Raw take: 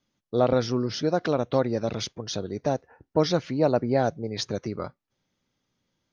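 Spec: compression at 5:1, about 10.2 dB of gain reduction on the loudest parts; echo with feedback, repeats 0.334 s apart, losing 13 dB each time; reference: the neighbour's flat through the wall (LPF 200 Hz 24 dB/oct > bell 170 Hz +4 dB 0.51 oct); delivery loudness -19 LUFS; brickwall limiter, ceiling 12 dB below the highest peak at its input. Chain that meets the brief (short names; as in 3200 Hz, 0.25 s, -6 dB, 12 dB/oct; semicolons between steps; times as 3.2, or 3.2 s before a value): compressor 5:1, threshold -28 dBFS; limiter -28 dBFS; LPF 200 Hz 24 dB/oct; bell 170 Hz +4 dB 0.51 oct; feedback echo 0.334 s, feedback 22%, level -13 dB; gain +26 dB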